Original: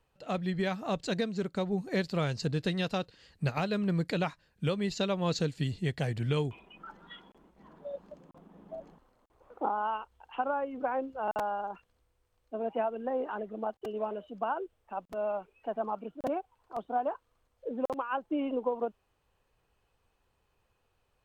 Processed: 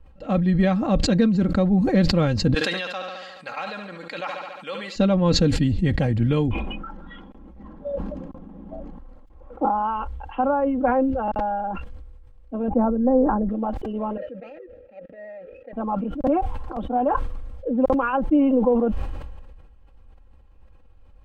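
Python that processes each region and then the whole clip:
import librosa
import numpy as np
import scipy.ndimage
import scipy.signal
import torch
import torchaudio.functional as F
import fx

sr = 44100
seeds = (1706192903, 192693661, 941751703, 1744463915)

y = fx.chain(x, sr, fx.highpass(hz=1000.0, slope=12),
    fx.echo_feedback(ms=71, feedback_pct=60, wet_db=-13.0), at=(2.54, 4.96))
y = fx.chain(y, sr, fx.lowpass(hz=5600.0, slope=24),
    fx.peak_eq(hz=1300.0, db=-3.0, octaves=0.29),
    fx.notch(hz=1000.0, q=5.1), at=(11.03, 11.71))
y = fx.chain(y, sr, fx.gaussian_blur(sigma=6.1),
    fx.low_shelf(hz=260.0, db=10.0), at=(12.68, 13.49))
y = fx.chain(y, sr, fx.median_filter(points=41),
    fx.vowel_filter(vowel='e'),
    fx.peak_eq(hz=1300.0, db=13.0, octaves=0.23), at=(14.17, 15.73))
y = fx.riaa(y, sr, side='playback')
y = y + 0.64 * np.pad(y, (int(3.7 * sr / 1000.0), 0))[:len(y)]
y = fx.sustainer(y, sr, db_per_s=34.0)
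y = y * 10.0 ** (4.5 / 20.0)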